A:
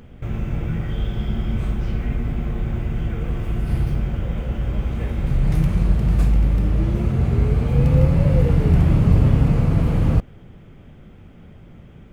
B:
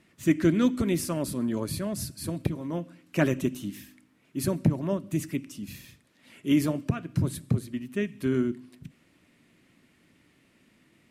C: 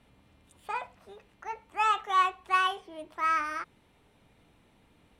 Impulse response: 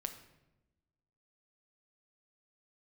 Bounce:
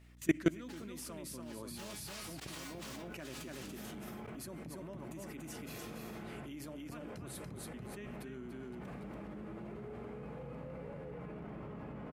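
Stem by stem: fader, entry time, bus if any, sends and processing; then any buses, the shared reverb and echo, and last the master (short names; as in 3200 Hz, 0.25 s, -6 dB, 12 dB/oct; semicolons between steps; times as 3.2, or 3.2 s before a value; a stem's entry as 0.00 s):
-0.5 dB, 2.40 s, bus A, send -17.5 dB, echo send -8.5 dB, three-band isolator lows -22 dB, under 160 Hz, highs -16 dB, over 2300 Hz
-1.0 dB, 0.00 s, no bus, no send, echo send -4.5 dB, dry
+2.0 dB, 0.00 s, bus A, send -17 dB, echo send -19.5 dB, high shelf 8000 Hz +9.5 dB; noise-modulated delay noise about 1900 Hz, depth 0.25 ms
bus A: 0.0 dB, resonator 210 Hz, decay 0.22 s, harmonics all, mix 100%; limiter -31 dBFS, peak gain reduction 11 dB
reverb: on, RT60 1.0 s, pre-delay 6 ms
echo: echo 0.286 s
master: low shelf 270 Hz -9 dB; level quantiser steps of 23 dB; hum 60 Hz, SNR 15 dB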